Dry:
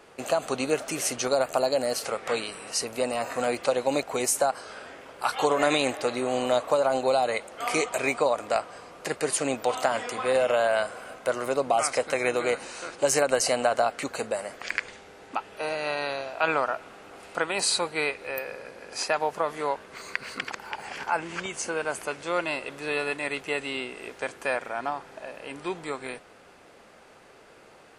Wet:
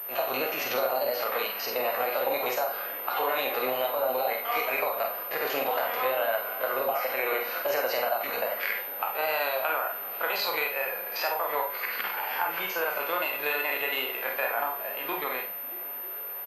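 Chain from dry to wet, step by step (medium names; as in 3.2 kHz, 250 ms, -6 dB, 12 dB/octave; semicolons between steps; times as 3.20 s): spectrogram pixelated in time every 50 ms; three-band isolator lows -17 dB, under 500 Hz, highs -24 dB, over 4.9 kHz; compression 16:1, threshold -31 dBFS, peak gain reduction 11 dB; tempo 1.7×; on a send: repeats whose band climbs or falls 314 ms, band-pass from 170 Hz, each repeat 0.7 oct, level -11 dB; on the sum: Schroeder reverb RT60 0.35 s, combs from 31 ms, DRR 2 dB; wow and flutter 29 cents; class-D stage that switches slowly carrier 13 kHz; trim +6 dB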